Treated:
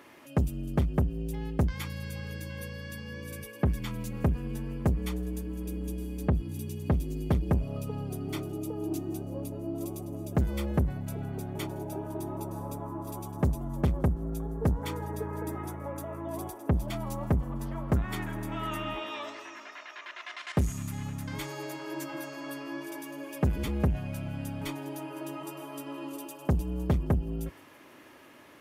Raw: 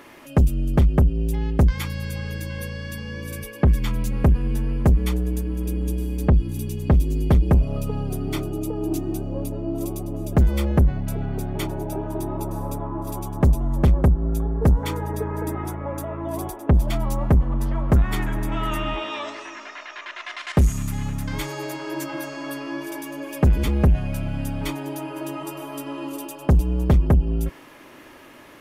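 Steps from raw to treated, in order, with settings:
high-pass filter 72 Hz
tuned comb filter 99 Hz, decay 1.2 s, harmonics odd, mix 30%
delay with a high-pass on its return 164 ms, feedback 78%, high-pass 5,600 Hz, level −19.5 dB
level −4.5 dB

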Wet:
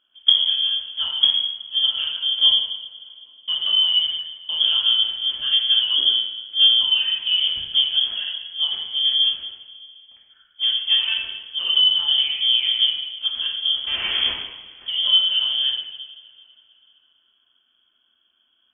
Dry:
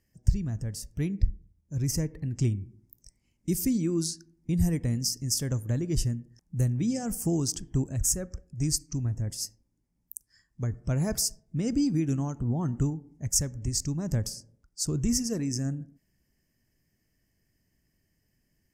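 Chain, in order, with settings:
one scale factor per block 5 bits
0:13.87–0:14.32: comparator with hysteresis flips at −44.5 dBFS
coupled-rooms reverb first 0.89 s, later 3.4 s, from −20 dB, DRR −4.5 dB
voice inversion scrambler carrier 3,300 Hz
level +1.5 dB

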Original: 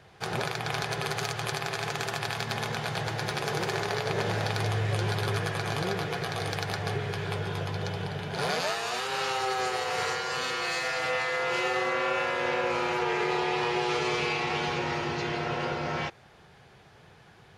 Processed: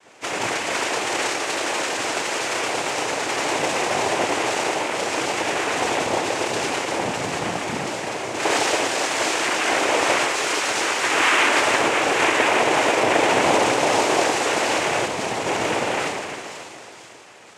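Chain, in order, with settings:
0:06.99–0:07.73: frequency shifter +140 Hz
high-pass filter 310 Hz 24 dB per octave
echo with a time of its own for lows and highs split 2,500 Hz, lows 277 ms, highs 482 ms, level −9 dB
feedback delay network reverb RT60 0.89 s, low-frequency decay 1.2×, high-frequency decay 0.9×, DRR −8 dB
0:15.05–0:15.46: tube saturation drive 18 dB, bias 0.55
cochlear-implant simulation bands 4

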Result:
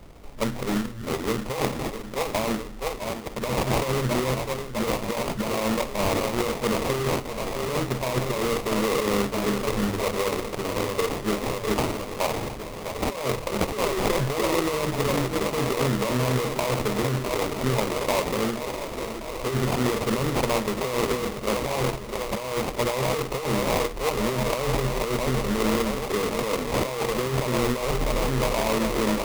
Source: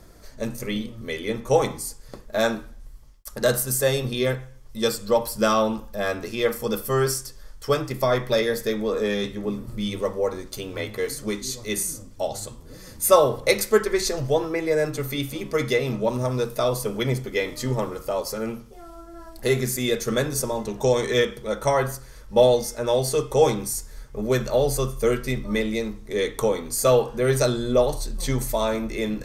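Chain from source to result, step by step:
feedback echo with a high-pass in the loop 655 ms, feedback 80%, high-pass 160 Hz, level −11 dB
compressor whose output falls as the input rises −24 dBFS, ratio −1
sample-rate reduction 1,600 Hz, jitter 20%

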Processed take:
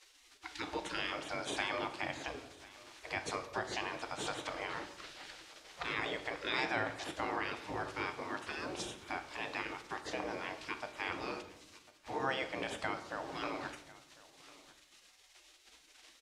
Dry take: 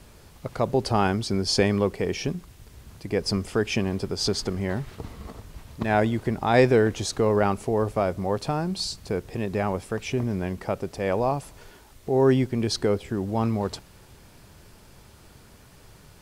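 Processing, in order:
high-pass filter 150 Hz 12 dB per octave
gate on every frequency bin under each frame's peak −20 dB weak
low-pass filter 5,200 Hz 12 dB per octave
parametric band 350 Hz +10 dB 1 octave
in parallel at −1 dB: brickwall limiter −26.5 dBFS, peak gain reduction 9 dB
on the sum: downward compressor 1.5 to 1, threshold −42 dBFS, peak gain reduction 6.5 dB
on a send: single-tap delay 1,049 ms −21 dB
on the sum: rectangular room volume 280 cubic metres, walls mixed, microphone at 0.49 metres

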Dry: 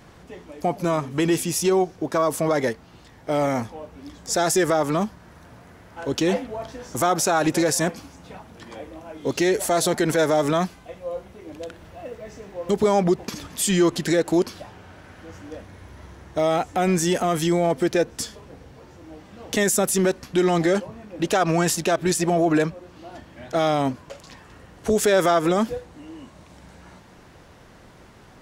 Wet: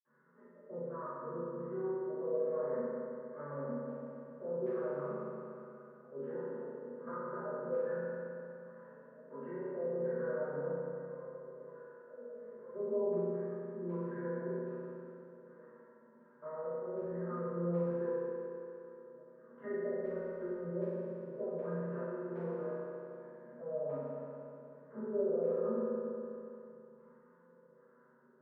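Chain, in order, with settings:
gain on one half-wave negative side −7 dB
treble cut that deepens with the level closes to 870 Hz, closed at −17 dBFS
elliptic band-pass filter 190–2,400 Hz
tilt shelving filter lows +3 dB, about 660 Hz
phaser with its sweep stopped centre 480 Hz, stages 8
auto-filter low-pass square 1.3 Hz 550–1,600 Hz
flutter between parallel walls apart 7.1 metres, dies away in 0.39 s
convolution reverb RT60 2.8 s, pre-delay 46 ms
level +6 dB

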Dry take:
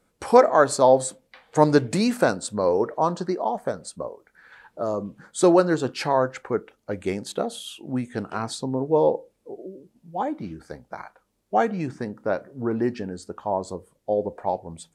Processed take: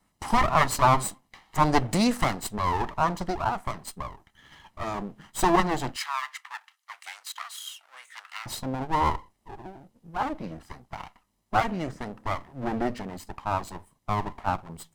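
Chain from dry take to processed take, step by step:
lower of the sound and its delayed copy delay 1 ms
0:05.96–0:08.46: high-pass filter 1,200 Hz 24 dB per octave

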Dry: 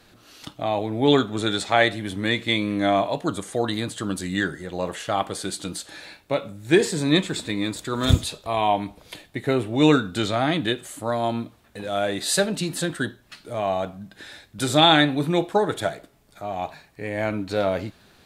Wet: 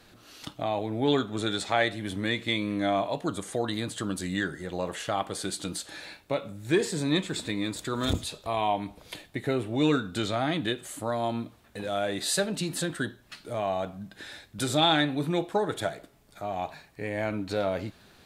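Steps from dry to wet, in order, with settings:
in parallel at +2 dB: downward compressor, threshold −28 dBFS, peak gain reduction 17 dB
on the sum: saturating transformer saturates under 310 Hz
level −8.5 dB

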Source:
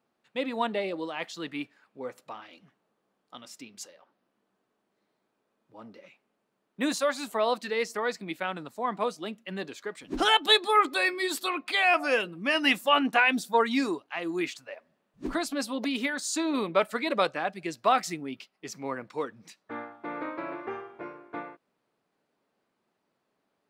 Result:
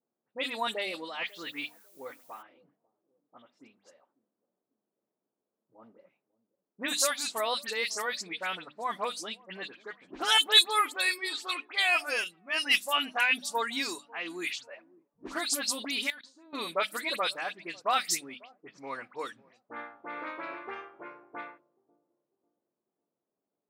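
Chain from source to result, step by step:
all-pass dispersion highs, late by 75 ms, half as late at 2,700 Hz
speech leveller within 3 dB 2 s
mains-hum notches 50/100/150/200/250/300 Hz
delay with a low-pass on its return 546 ms, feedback 37%, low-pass 730 Hz, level −21.5 dB
0:16.10–0:16.53: output level in coarse steps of 22 dB
low-shelf EQ 210 Hz +6 dB
low-pass that shuts in the quiet parts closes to 470 Hz, open at −24 dBFS
0:01.26–0:02.41: background noise white −71 dBFS
spectral tilt +4.5 dB per octave
0:12.24–0:12.76: multiband upward and downward expander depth 70%
level −5.5 dB

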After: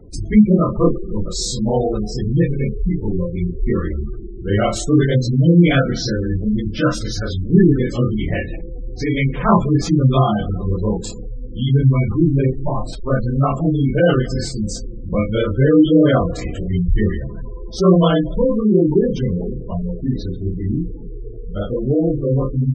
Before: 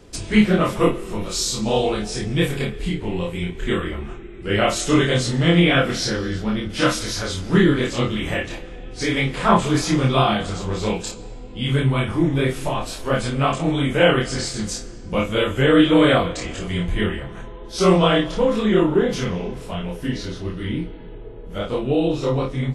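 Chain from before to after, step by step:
on a send at −23 dB: convolution reverb RT60 3.8 s, pre-delay 25 ms
on the sum: gate on every frequency bin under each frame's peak −15 dB strong
low-shelf EQ 230 Hz +8.5 dB

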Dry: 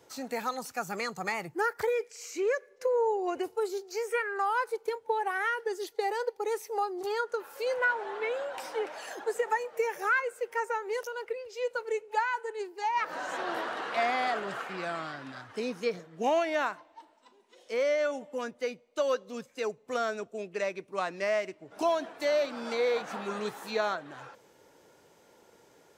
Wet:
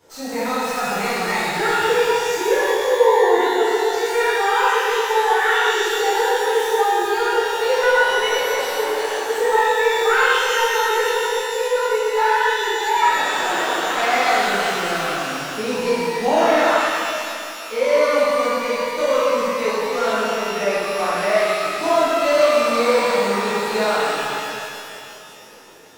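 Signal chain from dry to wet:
stylus tracing distortion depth 0.035 ms
reverb with rising layers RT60 2.6 s, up +12 semitones, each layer −8 dB, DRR −12 dB

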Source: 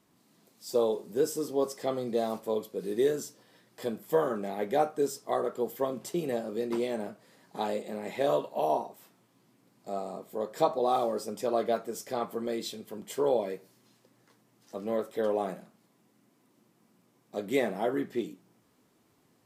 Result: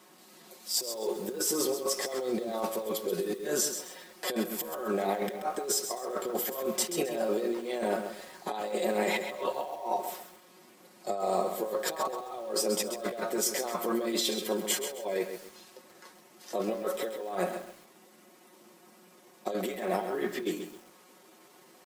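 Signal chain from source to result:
high-pass filter 360 Hz 12 dB per octave
comb filter 5.5 ms, depth 64%
compressor whose output falls as the input rises −39 dBFS, ratio −1
tempo change 0.89×
feedback echo at a low word length 132 ms, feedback 35%, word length 9 bits, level −8 dB
level +5.5 dB

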